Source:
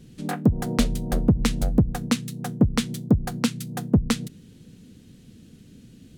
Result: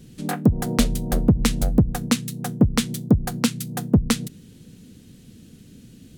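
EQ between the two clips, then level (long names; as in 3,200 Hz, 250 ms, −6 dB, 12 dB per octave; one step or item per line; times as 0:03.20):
high-shelf EQ 7,900 Hz +6.5 dB
+2.0 dB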